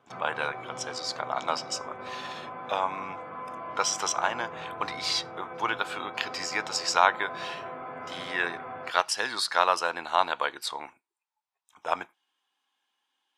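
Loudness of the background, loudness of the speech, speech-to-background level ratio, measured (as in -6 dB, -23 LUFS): -40.0 LUFS, -29.5 LUFS, 10.5 dB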